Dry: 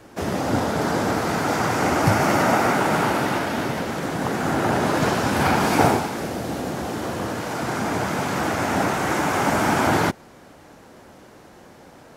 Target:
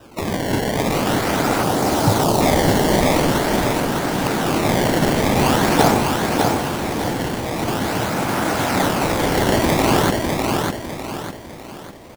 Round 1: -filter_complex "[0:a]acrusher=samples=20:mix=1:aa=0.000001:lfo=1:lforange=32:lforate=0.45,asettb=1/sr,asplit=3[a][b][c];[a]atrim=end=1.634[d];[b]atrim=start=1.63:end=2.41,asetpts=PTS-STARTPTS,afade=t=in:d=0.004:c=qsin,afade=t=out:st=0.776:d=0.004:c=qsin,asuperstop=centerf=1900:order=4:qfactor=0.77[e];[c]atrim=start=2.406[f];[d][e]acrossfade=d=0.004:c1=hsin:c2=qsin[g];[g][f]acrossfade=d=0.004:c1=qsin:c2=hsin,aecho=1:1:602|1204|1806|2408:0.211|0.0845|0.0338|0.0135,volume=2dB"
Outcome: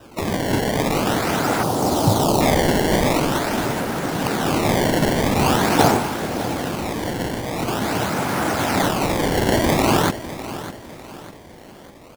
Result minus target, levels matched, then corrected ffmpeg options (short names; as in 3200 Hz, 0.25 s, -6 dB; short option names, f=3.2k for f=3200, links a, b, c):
echo-to-direct -10 dB
-filter_complex "[0:a]acrusher=samples=20:mix=1:aa=0.000001:lfo=1:lforange=32:lforate=0.45,asettb=1/sr,asplit=3[a][b][c];[a]atrim=end=1.634[d];[b]atrim=start=1.63:end=2.41,asetpts=PTS-STARTPTS,afade=t=in:d=0.004:c=qsin,afade=t=out:st=0.776:d=0.004:c=qsin,asuperstop=centerf=1900:order=4:qfactor=0.77[e];[c]atrim=start=2.406[f];[d][e]acrossfade=d=0.004:c1=hsin:c2=qsin[g];[g][f]acrossfade=d=0.004:c1=qsin:c2=hsin,aecho=1:1:602|1204|1806|2408|3010:0.668|0.267|0.107|0.0428|0.0171,volume=2dB"